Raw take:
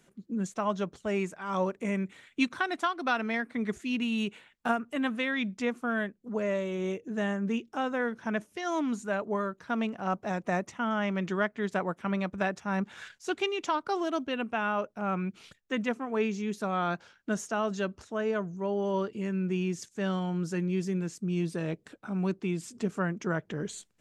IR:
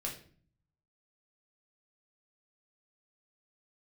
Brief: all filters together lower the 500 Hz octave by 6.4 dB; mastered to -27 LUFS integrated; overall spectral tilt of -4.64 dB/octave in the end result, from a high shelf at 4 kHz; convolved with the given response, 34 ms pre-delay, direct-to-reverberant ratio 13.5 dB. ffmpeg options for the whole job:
-filter_complex "[0:a]equalizer=f=500:t=o:g=-9,highshelf=f=4000:g=7,asplit=2[s0][s1];[1:a]atrim=start_sample=2205,adelay=34[s2];[s1][s2]afir=irnorm=-1:irlink=0,volume=0.188[s3];[s0][s3]amix=inputs=2:normalize=0,volume=2"

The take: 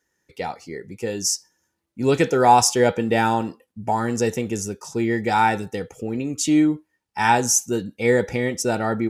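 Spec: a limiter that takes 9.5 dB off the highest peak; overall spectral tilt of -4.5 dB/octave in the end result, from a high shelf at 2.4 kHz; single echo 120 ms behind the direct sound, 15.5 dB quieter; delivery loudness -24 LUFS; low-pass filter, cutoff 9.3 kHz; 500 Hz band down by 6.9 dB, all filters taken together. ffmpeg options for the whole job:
-af "lowpass=9300,equalizer=f=500:t=o:g=-8.5,highshelf=f=2400:g=-5,alimiter=limit=0.168:level=0:latency=1,aecho=1:1:120:0.168,volume=1.5"

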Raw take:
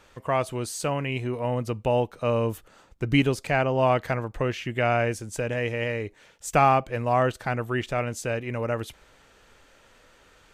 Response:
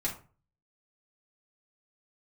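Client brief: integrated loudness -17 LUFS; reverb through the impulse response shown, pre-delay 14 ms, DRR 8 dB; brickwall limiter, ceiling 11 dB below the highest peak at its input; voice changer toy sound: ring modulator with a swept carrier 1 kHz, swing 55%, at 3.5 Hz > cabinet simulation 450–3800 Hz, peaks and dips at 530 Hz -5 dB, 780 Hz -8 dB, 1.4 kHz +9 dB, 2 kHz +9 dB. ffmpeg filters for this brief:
-filter_complex "[0:a]alimiter=limit=0.119:level=0:latency=1,asplit=2[s0][s1];[1:a]atrim=start_sample=2205,adelay=14[s2];[s1][s2]afir=irnorm=-1:irlink=0,volume=0.237[s3];[s0][s3]amix=inputs=2:normalize=0,aeval=exprs='val(0)*sin(2*PI*1000*n/s+1000*0.55/3.5*sin(2*PI*3.5*n/s))':c=same,highpass=450,equalizer=f=530:t=q:w=4:g=-5,equalizer=f=780:t=q:w=4:g=-8,equalizer=f=1400:t=q:w=4:g=9,equalizer=f=2000:t=q:w=4:g=9,lowpass=f=3800:w=0.5412,lowpass=f=3800:w=1.3066,volume=2.99"

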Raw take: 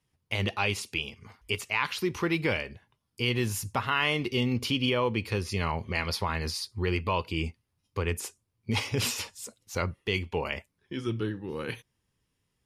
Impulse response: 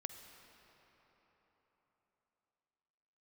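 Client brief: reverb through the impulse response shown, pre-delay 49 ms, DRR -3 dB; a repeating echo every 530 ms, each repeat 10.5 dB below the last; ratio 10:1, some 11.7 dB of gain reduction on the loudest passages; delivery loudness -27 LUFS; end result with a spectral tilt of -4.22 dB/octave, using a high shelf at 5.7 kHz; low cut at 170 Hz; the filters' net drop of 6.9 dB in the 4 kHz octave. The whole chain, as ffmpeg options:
-filter_complex "[0:a]highpass=170,equalizer=f=4000:t=o:g=-9,highshelf=f=5700:g=-4.5,acompressor=threshold=0.0158:ratio=10,aecho=1:1:530|1060|1590:0.299|0.0896|0.0269,asplit=2[s0][s1];[1:a]atrim=start_sample=2205,adelay=49[s2];[s1][s2]afir=irnorm=-1:irlink=0,volume=2[s3];[s0][s3]amix=inputs=2:normalize=0,volume=3.16"

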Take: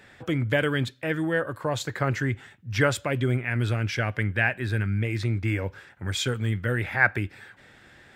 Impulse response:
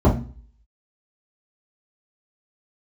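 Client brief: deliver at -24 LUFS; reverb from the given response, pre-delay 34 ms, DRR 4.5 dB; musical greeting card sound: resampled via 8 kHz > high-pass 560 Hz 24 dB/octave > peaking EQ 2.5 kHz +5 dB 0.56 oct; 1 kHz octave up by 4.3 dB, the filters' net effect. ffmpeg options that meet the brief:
-filter_complex "[0:a]equalizer=f=1000:t=o:g=6,asplit=2[s0][s1];[1:a]atrim=start_sample=2205,adelay=34[s2];[s1][s2]afir=irnorm=-1:irlink=0,volume=0.0596[s3];[s0][s3]amix=inputs=2:normalize=0,aresample=8000,aresample=44100,highpass=f=560:w=0.5412,highpass=f=560:w=1.3066,equalizer=f=2500:t=o:w=0.56:g=5,volume=1.26"

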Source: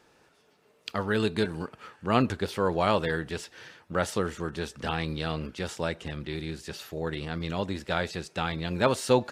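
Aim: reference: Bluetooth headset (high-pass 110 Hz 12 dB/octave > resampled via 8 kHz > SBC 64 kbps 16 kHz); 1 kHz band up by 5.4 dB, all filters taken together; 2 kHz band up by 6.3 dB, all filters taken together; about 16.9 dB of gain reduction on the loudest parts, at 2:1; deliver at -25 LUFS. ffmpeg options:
-af "equalizer=f=1000:t=o:g=5,equalizer=f=2000:t=o:g=6.5,acompressor=threshold=0.00447:ratio=2,highpass=110,aresample=8000,aresample=44100,volume=6.68" -ar 16000 -c:a sbc -b:a 64k

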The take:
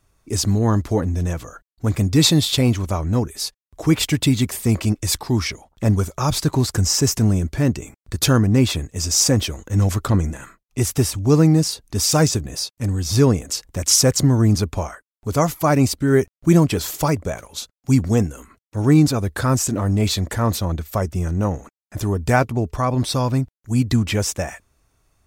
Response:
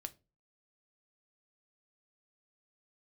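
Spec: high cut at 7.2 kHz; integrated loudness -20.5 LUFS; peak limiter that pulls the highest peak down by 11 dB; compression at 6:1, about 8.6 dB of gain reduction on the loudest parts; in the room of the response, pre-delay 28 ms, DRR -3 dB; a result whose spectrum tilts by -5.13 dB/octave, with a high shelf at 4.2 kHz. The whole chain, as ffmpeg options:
-filter_complex "[0:a]lowpass=7200,highshelf=f=4200:g=-5,acompressor=threshold=0.112:ratio=6,alimiter=limit=0.0944:level=0:latency=1,asplit=2[s0][s1];[1:a]atrim=start_sample=2205,adelay=28[s2];[s1][s2]afir=irnorm=-1:irlink=0,volume=2.11[s3];[s0][s3]amix=inputs=2:normalize=0,volume=1.68"

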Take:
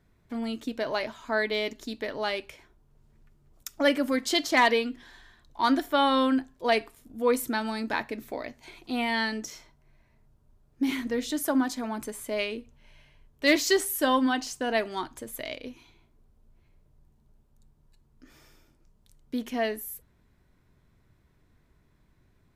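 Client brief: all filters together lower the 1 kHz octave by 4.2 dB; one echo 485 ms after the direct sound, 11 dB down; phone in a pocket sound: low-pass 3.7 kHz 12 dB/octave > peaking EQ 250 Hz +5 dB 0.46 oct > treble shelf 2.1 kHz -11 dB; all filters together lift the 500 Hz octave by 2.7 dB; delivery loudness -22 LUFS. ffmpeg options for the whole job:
-af "lowpass=3700,equalizer=f=250:t=o:w=0.46:g=5,equalizer=f=500:t=o:g=5,equalizer=f=1000:t=o:g=-5,highshelf=f=2100:g=-11,aecho=1:1:485:0.282,volume=1.68"

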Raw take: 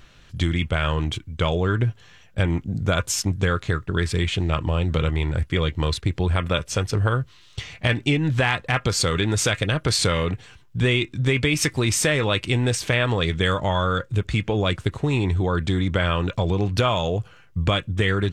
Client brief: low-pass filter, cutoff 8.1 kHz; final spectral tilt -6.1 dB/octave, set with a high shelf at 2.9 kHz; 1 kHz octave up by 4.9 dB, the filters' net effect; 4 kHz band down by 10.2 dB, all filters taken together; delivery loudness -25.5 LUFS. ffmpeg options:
-af "lowpass=8100,equalizer=f=1000:t=o:g=8,highshelf=f=2900:g=-8,equalizer=f=4000:t=o:g=-7.5,volume=0.75"

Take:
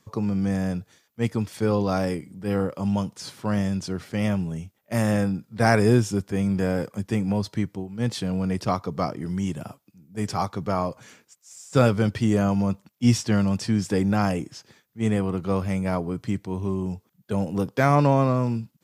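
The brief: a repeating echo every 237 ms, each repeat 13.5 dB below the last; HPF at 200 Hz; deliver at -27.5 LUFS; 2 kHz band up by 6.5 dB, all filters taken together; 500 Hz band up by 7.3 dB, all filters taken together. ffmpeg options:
-af "highpass=200,equalizer=f=500:t=o:g=8.5,equalizer=f=2000:t=o:g=8,aecho=1:1:237|474:0.211|0.0444,volume=0.531"

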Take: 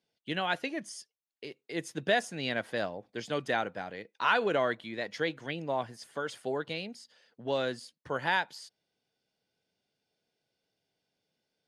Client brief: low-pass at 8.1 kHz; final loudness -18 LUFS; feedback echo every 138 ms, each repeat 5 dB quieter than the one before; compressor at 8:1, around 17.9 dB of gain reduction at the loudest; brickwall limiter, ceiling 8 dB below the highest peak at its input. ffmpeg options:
-af "lowpass=8100,acompressor=threshold=0.00891:ratio=8,alimiter=level_in=3.55:limit=0.0631:level=0:latency=1,volume=0.282,aecho=1:1:138|276|414|552|690|828|966:0.562|0.315|0.176|0.0988|0.0553|0.031|0.0173,volume=26.6"

